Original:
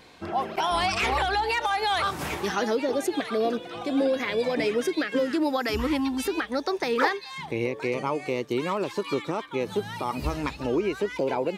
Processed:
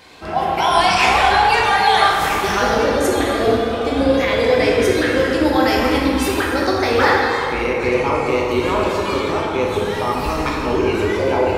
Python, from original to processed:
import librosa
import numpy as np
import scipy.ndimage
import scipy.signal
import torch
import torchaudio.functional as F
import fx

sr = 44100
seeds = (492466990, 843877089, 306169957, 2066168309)

y = fx.octave_divider(x, sr, octaves=2, level_db=-1.0)
y = fx.low_shelf(y, sr, hz=300.0, db=-10.0)
y = fx.rev_plate(y, sr, seeds[0], rt60_s=2.8, hf_ratio=0.5, predelay_ms=0, drr_db=-4.0)
y = F.gain(torch.from_numpy(y), 6.5).numpy()